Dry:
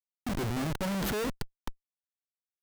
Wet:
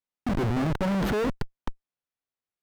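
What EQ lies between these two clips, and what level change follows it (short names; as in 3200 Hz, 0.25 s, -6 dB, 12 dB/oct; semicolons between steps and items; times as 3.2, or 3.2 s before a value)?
LPF 1800 Hz 6 dB/oct; +6.5 dB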